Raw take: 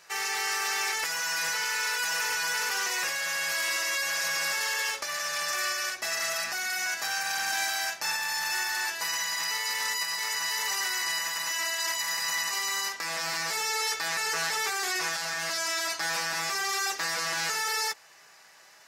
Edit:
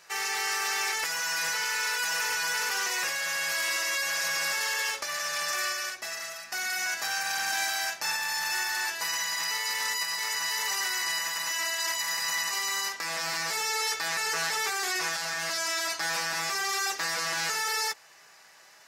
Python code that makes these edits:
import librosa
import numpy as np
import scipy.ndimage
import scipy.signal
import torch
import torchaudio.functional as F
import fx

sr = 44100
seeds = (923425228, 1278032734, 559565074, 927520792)

y = fx.edit(x, sr, fx.fade_out_to(start_s=5.59, length_s=0.93, floor_db=-14.0), tone=tone)